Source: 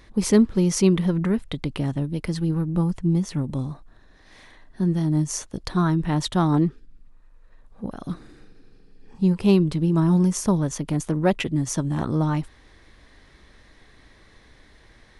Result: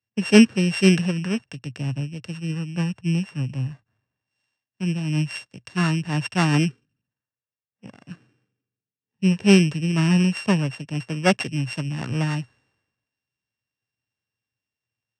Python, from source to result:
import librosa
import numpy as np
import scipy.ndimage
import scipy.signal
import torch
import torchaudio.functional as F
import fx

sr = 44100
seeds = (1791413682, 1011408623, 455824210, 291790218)

y = np.r_[np.sort(x[:len(x) // 16 * 16].reshape(-1, 16), axis=1).ravel(), x[len(x) // 16 * 16:]]
y = fx.cabinet(y, sr, low_hz=100.0, low_slope=24, high_hz=8000.0, hz=(120.0, 340.0, 1700.0), db=(9, -4, 7))
y = fx.band_widen(y, sr, depth_pct=100)
y = y * 10.0 ** (-2.5 / 20.0)